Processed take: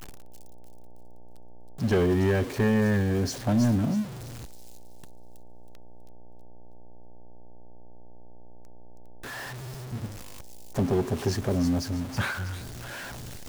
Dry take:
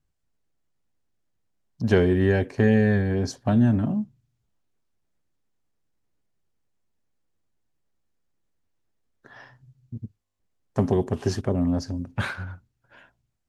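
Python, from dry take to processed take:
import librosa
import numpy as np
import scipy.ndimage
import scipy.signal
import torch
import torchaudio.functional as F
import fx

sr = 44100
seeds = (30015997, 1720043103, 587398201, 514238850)

p1 = x + 0.5 * 10.0 ** (-31.0 / 20.0) * np.sign(x)
p2 = fx.dmg_buzz(p1, sr, base_hz=60.0, harmonics=15, level_db=-53.0, tilt_db=-2, odd_only=False)
p3 = 10.0 ** (-17.0 / 20.0) * (np.abs((p2 / 10.0 ** (-17.0 / 20.0) + 3.0) % 4.0 - 2.0) - 1.0)
p4 = p2 + (p3 * 10.0 ** (-4.5 / 20.0))
p5 = fx.echo_wet_highpass(p4, sr, ms=322, feedback_pct=35, hz=4500.0, wet_db=-4)
y = p5 * 10.0 ** (-6.5 / 20.0)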